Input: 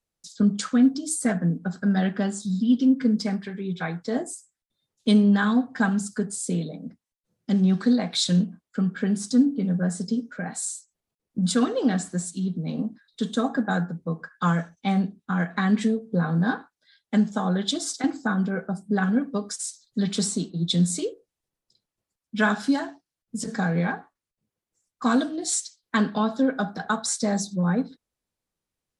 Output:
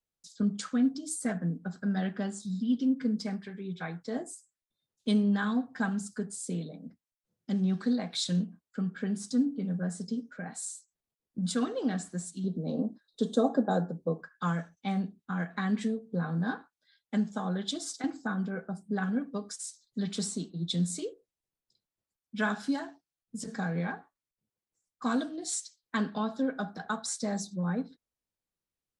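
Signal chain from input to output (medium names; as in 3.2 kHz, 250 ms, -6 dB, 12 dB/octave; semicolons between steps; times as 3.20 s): 12.44–14.21 s: FFT filter 130 Hz 0 dB, 540 Hz +12 dB, 2.2 kHz -10 dB, 3.9 kHz +2 dB; trim -8 dB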